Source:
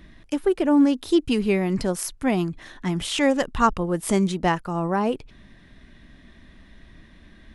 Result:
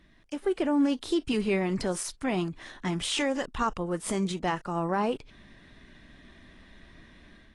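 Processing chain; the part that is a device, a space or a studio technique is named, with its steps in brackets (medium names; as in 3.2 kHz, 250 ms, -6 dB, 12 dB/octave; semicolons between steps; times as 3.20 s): bass shelf 300 Hz -5 dB; low-bitrate web radio (level rider gain up to 8 dB; peak limiter -9 dBFS, peak gain reduction 7 dB; trim -9 dB; AAC 32 kbps 22.05 kHz)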